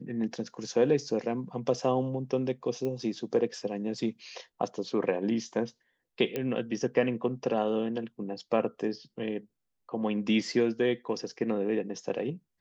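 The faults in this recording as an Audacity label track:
2.850000	2.850000	pop -23 dBFS
6.360000	6.360000	pop -18 dBFS

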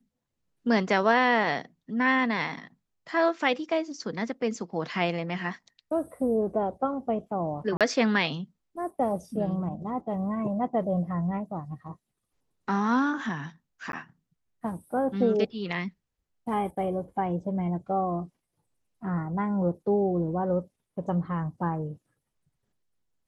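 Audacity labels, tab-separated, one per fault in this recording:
7.770000	7.810000	dropout 37 ms
13.920000	13.930000	dropout

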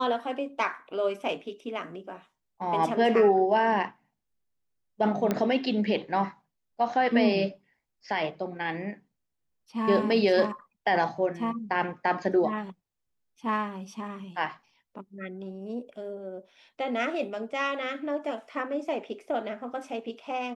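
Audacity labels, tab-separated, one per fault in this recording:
5.310000	5.310000	pop -13 dBFS

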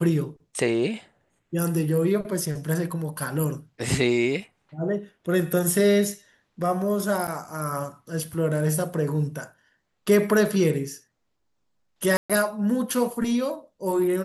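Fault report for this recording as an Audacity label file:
7.270000	7.280000	dropout 8.1 ms
12.170000	12.300000	dropout 126 ms

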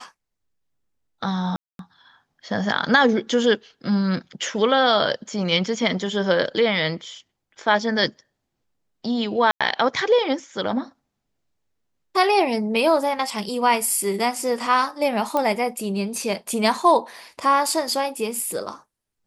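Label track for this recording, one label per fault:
1.560000	1.790000	dropout 232 ms
9.510000	9.610000	dropout 96 ms
15.370000	15.370000	pop -10 dBFS

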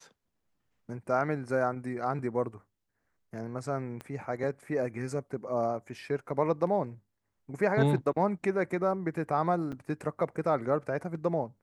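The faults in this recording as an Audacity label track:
4.010000	4.010000	pop -26 dBFS
9.720000	9.730000	dropout 6.6 ms

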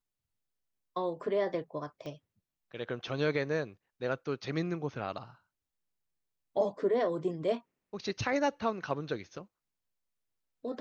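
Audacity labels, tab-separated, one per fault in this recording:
2.060000	2.060000	pop -31 dBFS

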